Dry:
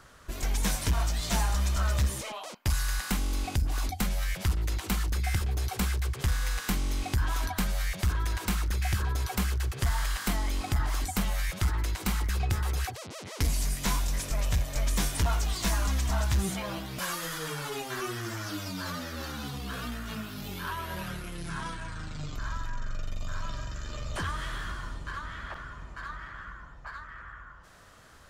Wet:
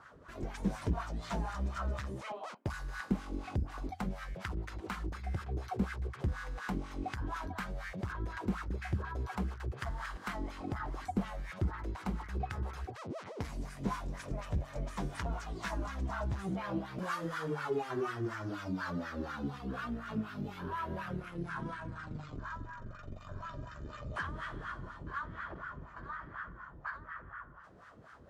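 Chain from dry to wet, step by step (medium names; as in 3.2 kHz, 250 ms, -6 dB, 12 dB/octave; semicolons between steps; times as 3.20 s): tone controls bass +15 dB, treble +4 dB; in parallel at -0.5 dB: compression, threshold -26 dBFS, peak gain reduction 17 dB; on the sum: wah-wah 4.1 Hz 340–1500 Hz, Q 2.2; trim -1.5 dB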